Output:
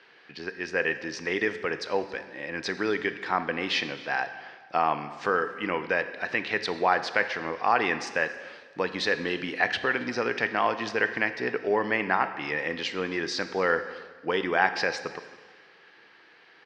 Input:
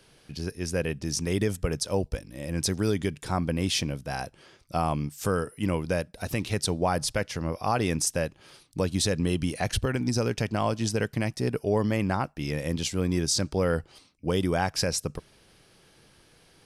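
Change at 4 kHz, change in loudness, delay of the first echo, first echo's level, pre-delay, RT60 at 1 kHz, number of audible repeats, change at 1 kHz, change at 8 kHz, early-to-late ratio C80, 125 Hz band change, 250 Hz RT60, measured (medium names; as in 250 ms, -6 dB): -1.0 dB, +0.5 dB, 274 ms, -23.5 dB, 6 ms, 1.4 s, 1, +5.0 dB, -14.5 dB, 12.5 dB, -16.0 dB, 1.4 s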